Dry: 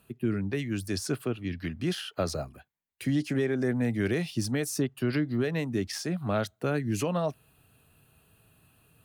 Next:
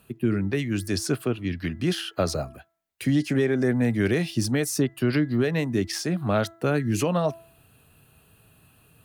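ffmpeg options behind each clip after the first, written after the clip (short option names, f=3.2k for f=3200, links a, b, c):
-af "bandreject=f=332.5:t=h:w=4,bandreject=f=665:t=h:w=4,bandreject=f=997.5:t=h:w=4,bandreject=f=1.33k:t=h:w=4,bandreject=f=1.6625k:t=h:w=4,bandreject=f=1.995k:t=h:w=4,volume=5dB"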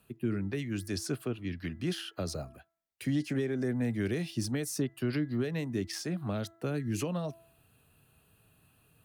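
-filter_complex "[0:a]acrossover=split=420|3000[a][b][c];[b]acompressor=threshold=-31dB:ratio=6[d];[a][d][c]amix=inputs=3:normalize=0,volume=-8dB"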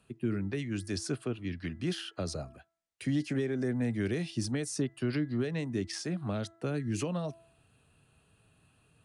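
-af "aresample=22050,aresample=44100"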